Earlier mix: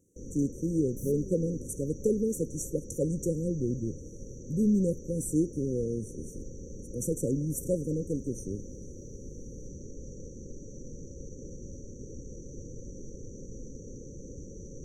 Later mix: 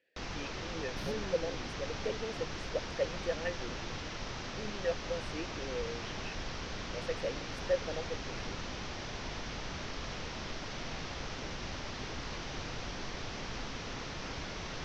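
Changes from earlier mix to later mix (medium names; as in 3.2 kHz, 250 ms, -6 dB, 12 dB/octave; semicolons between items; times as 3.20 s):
speech: add vowel filter e; second sound: add Savitzky-Golay filter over 15 samples; master: remove brick-wall FIR band-stop 570–5700 Hz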